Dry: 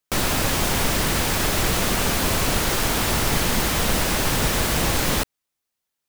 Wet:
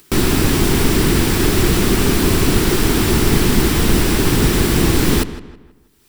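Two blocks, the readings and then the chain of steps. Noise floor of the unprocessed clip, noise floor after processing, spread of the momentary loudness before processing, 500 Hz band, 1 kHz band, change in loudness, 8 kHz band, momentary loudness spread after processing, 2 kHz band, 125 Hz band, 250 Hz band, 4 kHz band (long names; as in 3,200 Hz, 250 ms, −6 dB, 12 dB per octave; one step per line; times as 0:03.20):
−82 dBFS, −51 dBFS, 0 LU, +7.5 dB, +1.0 dB, +5.5 dB, +2.0 dB, 1 LU, +2.5 dB, +9.0 dB, +11.5 dB, +2.5 dB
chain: low shelf with overshoot 460 Hz +6 dB, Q 3
notch filter 6,500 Hz, Q 17
upward compression, threshold −30 dBFS
feedback echo with a low-pass in the loop 161 ms, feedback 39%, low-pass 3,300 Hz, level −14 dB
level +2.5 dB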